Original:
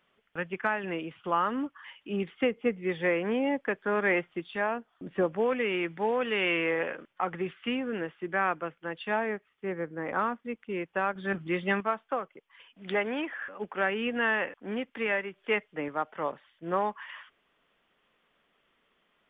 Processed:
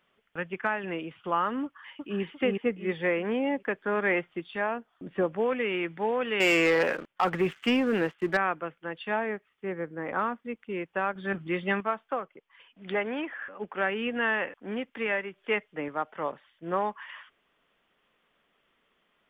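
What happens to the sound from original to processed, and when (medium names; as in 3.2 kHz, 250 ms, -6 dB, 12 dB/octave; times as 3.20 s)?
1.64–2.22 s: echo throw 350 ms, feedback 35%, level -1 dB
6.40–8.37 s: waveshaping leveller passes 2
12.20–13.72 s: distance through air 92 m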